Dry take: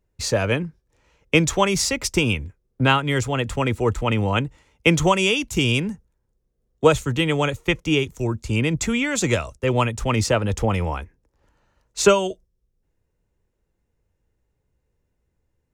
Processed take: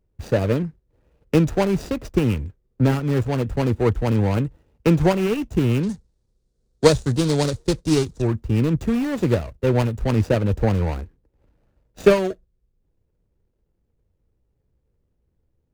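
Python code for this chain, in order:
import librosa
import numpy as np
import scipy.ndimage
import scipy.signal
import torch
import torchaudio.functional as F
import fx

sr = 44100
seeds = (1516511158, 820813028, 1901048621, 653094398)

y = scipy.signal.medfilt(x, 41)
y = fx.band_shelf(y, sr, hz=6000.0, db=13.5, octaves=1.7, at=(5.83, 8.22))
y = y * librosa.db_to_amplitude(3.0)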